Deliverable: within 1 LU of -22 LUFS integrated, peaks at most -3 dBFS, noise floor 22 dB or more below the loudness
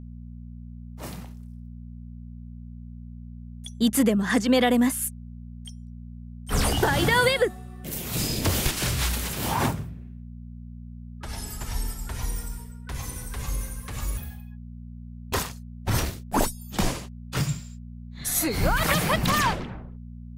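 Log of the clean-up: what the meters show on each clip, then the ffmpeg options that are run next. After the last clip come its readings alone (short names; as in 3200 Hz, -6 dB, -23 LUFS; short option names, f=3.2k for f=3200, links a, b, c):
hum 60 Hz; harmonics up to 240 Hz; hum level -37 dBFS; loudness -26.0 LUFS; peak -9.0 dBFS; loudness target -22.0 LUFS
-> -af "bandreject=f=60:t=h:w=4,bandreject=f=120:t=h:w=4,bandreject=f=180:t=h:w=4,bandreject=f=240:t=h:w=4"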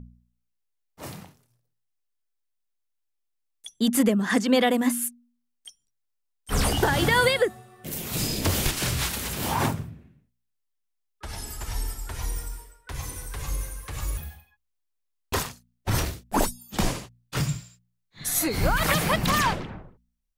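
hum none; loudness -26.0 LUFS; peak -8.5 dBFS; loudness target -22.0 LUFS
-> -af "volume=4dB"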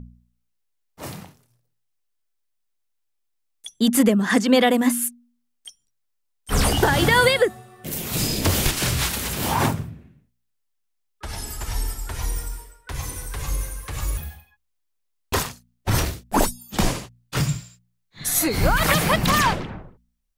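loudness -22.0 LUFS; peak -4.5 dBFS; noise floor -73 dBFS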